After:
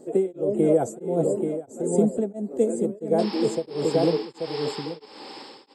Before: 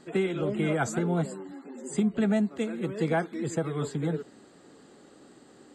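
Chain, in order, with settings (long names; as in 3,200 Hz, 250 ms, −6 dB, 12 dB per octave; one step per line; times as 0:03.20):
sound drawn into the spectrogram noise, 0:03.18–0:05.06, 760–5,400 Hz −30 dBFS
drawn EQ curve 160 Hz 0 dB, 530 Hz +14 dB, 1,400 Hz −13 dB, 3,900 Hz −11 dB, 9,100 Hz +9 dB
single-tap delay 833 ms −5 dB
tremolo along a rectified sine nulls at 1.5 Hz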